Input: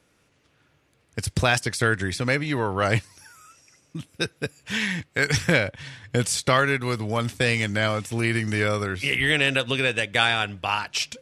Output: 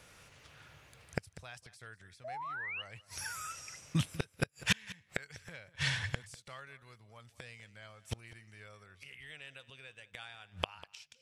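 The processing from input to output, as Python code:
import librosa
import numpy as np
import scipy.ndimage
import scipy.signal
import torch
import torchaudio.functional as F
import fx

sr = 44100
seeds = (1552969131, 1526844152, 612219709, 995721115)

p1 = fx.spec_paint(x, sr, seeds[0], shape='rise', start_s=2.24, length_s=0.58, low_hz=600.0, high_hz=3000.0, level_db=-12.0)
p2 = fx.gate_flip(p1, sr, shuts_db=-21.0, range_db=-36)
p3 = fx.peak_eq(p2, sr, hz=290.0, db=-11.5, octaves=1.2)
p4 = p3 + fx.echo_single(p3, sr, ms=197, db=-18.5, dry=0)
y = p4 * 10.0 ** (8.0 / 20.0)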